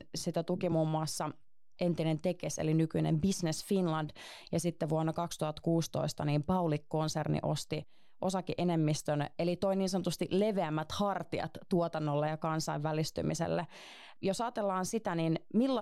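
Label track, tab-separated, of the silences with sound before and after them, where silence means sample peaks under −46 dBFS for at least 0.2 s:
1.320000	1.790000	silence
7.830000	8.220000	silence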